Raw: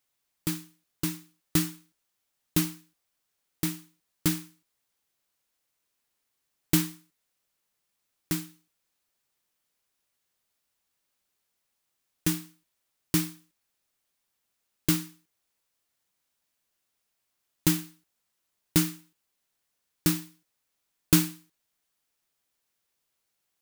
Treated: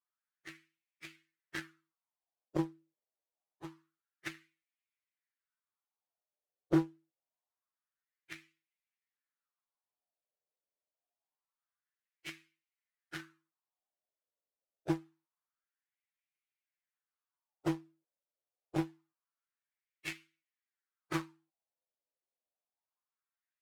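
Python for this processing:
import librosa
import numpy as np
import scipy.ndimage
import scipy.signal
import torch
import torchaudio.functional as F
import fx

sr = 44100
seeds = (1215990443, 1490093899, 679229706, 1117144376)

y = fx.partial_stretch(x, sr, pct=124)
y = fx.wah_lfo(y, sr, hz=0.26, low_hz=540.0, high_hz=2300.0, q=3.4)
y = fx.cheby_harmonics(y, sr, harmonics=(3, 7), levels_db=(-23, -22), full_scale_db=-31.0)
y = y * 10.0 ** (14.5 / 20.0)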